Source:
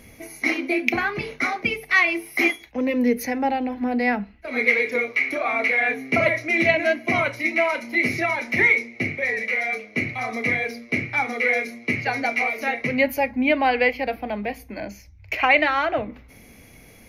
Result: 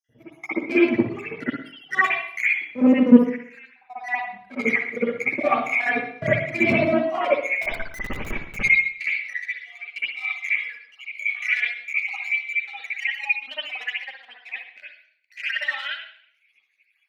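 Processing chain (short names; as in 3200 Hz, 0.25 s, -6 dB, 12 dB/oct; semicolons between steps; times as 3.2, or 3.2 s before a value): random spectral dropouts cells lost 70%; high shelf 5100 Hz -11.5 dB; power-law curve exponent 1.4; high-pass sweep 130 Hz -> 2700 Hz, 6.87–8.04; 7.62–8.57 Schmitt trigger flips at -33 dBFS; reverb, pre-delay 54 ms, DRR -12 dB; gain -2.5 dB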